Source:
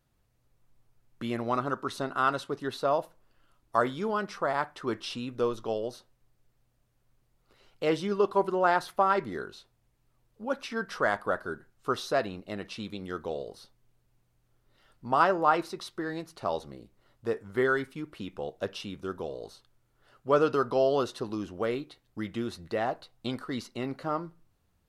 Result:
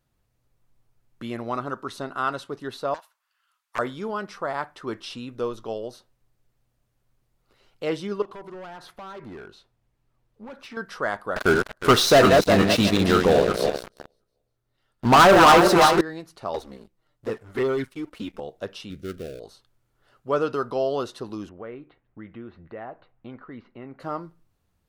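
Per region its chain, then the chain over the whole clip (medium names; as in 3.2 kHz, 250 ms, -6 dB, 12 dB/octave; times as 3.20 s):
2.94–3.79 s: high-pass 1.1 kHz 24 dB/octave + hard clipper -24 dBFS + loudspeaker Doppler distortion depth 0.85 ms
8.22–10.77 s: compression 4:1, threshold -32 dBFS + hard clipper -36 dBFS + treble shelf 5.3 kHz -8.5 dB
11.36–16.01 s: backward echo that repeats 180 ms, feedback 46%, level -5 dB + waveshaping leveller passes 5
16.54–18.40 s: touch-sensitive flanger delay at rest 7.1 ms, full sweep at -21.5 dBFS + waveshaping leveller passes 2
18.90–19.40 s: dead-time distortion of 0.18 ms + Butterworth band-stop 920 Hz, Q 1.3 + bass shelf 210 Hz +7.5 dB
21.49–24.00 s: low-pass 2.4 kHz 24 dB/octave + compression 1.5:1, threshold -47 dBFS
whole clip: none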